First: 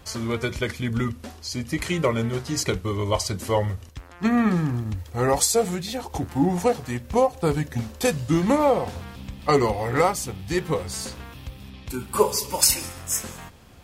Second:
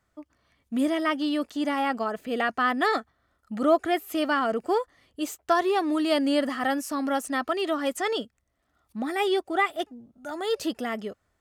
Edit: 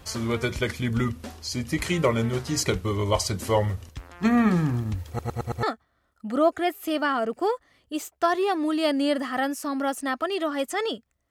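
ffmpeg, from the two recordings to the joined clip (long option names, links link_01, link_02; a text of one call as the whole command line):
ffmpeg -i cue0.wav -i cue1.wav -filter_complex "[0:a]apad=whole_dur=11.3,atrim=end=11.3,asplit=5[link_01][link_02][link_03][link_04][link_05];[link_01]atrim=end=5.192[link_06];[link_02]atrim=start=5.078:end=5.192[link_07];[link_03]atrim=start=5.078:end=5.192[link_08];[link_04]atrim=start=5.078:end=5.192[link_09];[link_05]atrim=start=5.078:end=5.192[link_10];[1:a]atrim=start=2.898:end=8.57[link_11];[link_06][link_07]acrossfade=duration=0.004:curve1=hsin:curve2=hsin[link_12];[link_12][link_08]acrossfade=duration=0.004:curve1=hsin:curve2=hsin[link_13];[link_13][link_09]acrossfade=duration=0.004:curve1=hsin:curve2=hsin[link_14];[link_14][link_10]acrossfade=duration=0.004:curve1=hsin:curve2=hsin[link_15];[link_15][link_11]acrossfade=duration=0.004:curve1=hsin:curve2=hsin" out.wav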